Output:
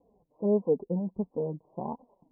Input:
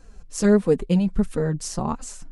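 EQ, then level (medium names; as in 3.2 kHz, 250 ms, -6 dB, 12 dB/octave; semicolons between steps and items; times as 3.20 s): Bessel high-pass 230 Hz, order 2; steep low-pass 1 kHz 96 dB/octave; peaking EQ 540 Hz +2.5 dB; -7.0 dB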